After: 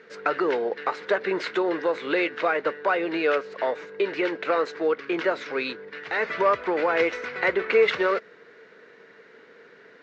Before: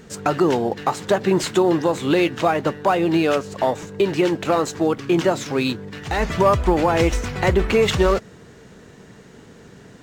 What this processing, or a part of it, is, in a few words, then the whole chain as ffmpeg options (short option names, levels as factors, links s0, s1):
phone earpiece: -af "highpass=450,equalizer=f=460:t=q:w=4:g=7,equalizer=f=790:t=q:w=4:g=-6,equalizer=f=1500:t=q:w=4:g=7,equalizer=f=2100:t=q:w=4:g=7,equalizer=f=3200:t=q:w=4:g=-4,lowpass=f=4300:w=0.5412,lowpass=f=4300:w=1.3066,volume=0.596"